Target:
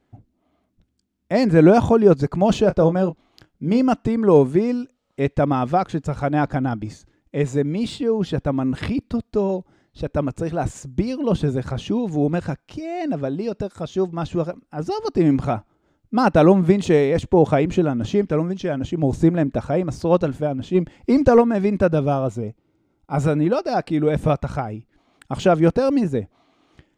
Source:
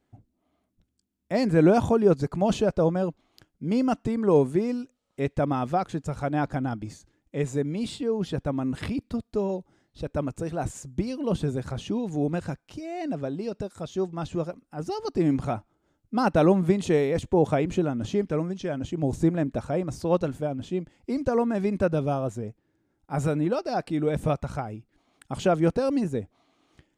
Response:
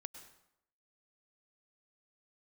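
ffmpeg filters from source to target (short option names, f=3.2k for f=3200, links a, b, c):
-filter_complex "[0:a]asplit=2[a][b];[b]adynamicsmooth=sensitivity=7:basefreq=7.2k,volume=2.5dB[c];[a][c]amix=inputs=2:normalize=0,asettb=1/sr,asplit=3[d][e][f];[d]atrim=end=2.624[g];[e]atrim=start=2.62:end=3.8,asetpts=PTS-STARTPTS,afade=t=in:d=0.004:c=qsin,afade=t=out:st=1.176:d=0.004:c=qsin,asplit=2[h][i];[i]adelay=26,volume=-12dB[j];[h][j]amix=inputs=2:normalize=0,atrim=end_sample=52038[k];[f]atrim=start=3.796[l];[g][k]acrossfade=d=0.004:c1=hsin:c2=qsin[m];[m][l]acrossfade=d=0.004:c1=qsin:c2=hsin,asplit=3[n][o][p];[n]afade=t=out:st=20.74:d=0.02[q];[o]acontrast=54,afade=t=in:st=20.74:d=0.02,afade=t=out:st=21.4:d=0.02[r];[p]afade=t=in:st=21.4:d=0.02[s];[q][r][s]amix=inputs=3:normalize=0,asettb=1/sr,asplit=3[t][u][v];[t]atrim=end=22.264[w];[u]atrim=start=22.26:end=23.2,asetpts=PTS-STARTPTS,afade=t=in:d=0.004:c=qsin,afade=t=out:st=0.936:d=0.004:c=qsin,asuperstop=centerf=1700:order=4:qfactor=4.8[x];[v]atrim=start=23.196[y];[w][x]acrossfade=d=0.004:c1=hsin:c2=qsin[z];[z][y]acrossfade=d=0.004:c1=qsin:c2=hsin,volume=-1dB"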